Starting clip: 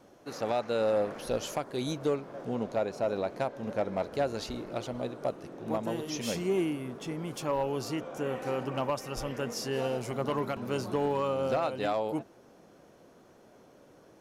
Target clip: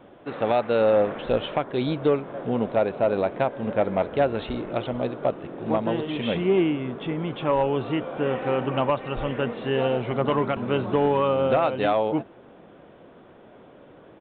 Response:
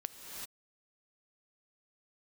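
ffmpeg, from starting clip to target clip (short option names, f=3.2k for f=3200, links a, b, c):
-af "aresample=8000,aresample=44100,volume=8dB"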